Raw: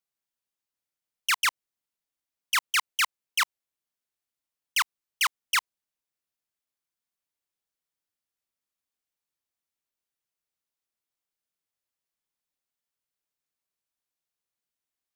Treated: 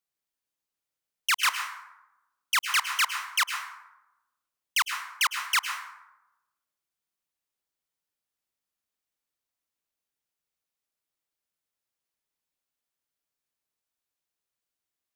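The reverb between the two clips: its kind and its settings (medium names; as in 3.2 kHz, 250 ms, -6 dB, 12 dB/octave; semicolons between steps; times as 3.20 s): plate-style reverb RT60 0.96 s, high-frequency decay 0.5×, pre-delay 95 ms, DRR 6 dB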